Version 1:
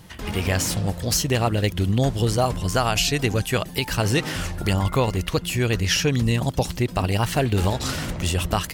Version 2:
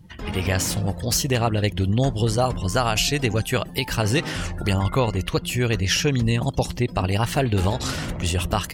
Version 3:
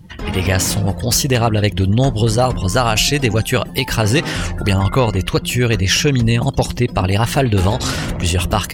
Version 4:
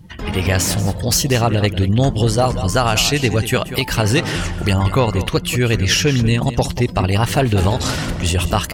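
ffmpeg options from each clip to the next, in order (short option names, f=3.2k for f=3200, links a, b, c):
-af "afftdn=nr=16:nf=-44"
-af "acontrast=80"
-filter_complex "[0:a]asplit=2[a][b];[b]adelay=186.6,volume=-12dB,highshelf=f=4k:g=-4.2[c];[a][c]amix=inputs=2:normalize=0,volume=-1dB"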